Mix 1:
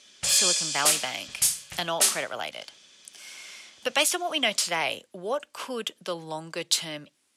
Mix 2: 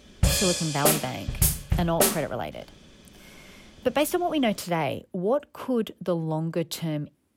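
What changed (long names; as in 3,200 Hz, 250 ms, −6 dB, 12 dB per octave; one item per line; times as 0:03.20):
background +6.5 dB
master: remove meter weighting curve ITU-R 468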